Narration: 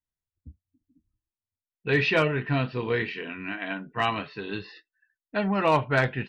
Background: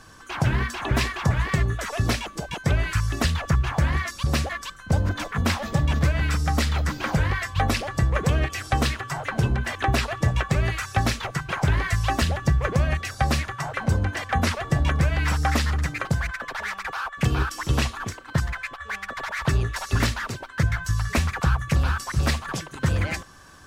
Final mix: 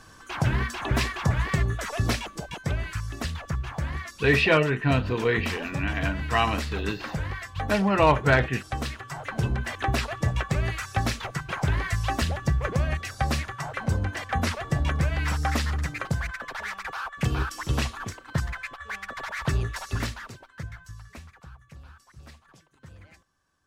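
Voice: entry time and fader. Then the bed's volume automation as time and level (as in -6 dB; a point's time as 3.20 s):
2.35 s, +2.5 dB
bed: 2.16 s -2 dB
3.01 s -8.5 dB
8.90 s -8.5 dB
9.47 s -3.5 dB
19.71 s -3.5 dB
21.48 s -25.5 dB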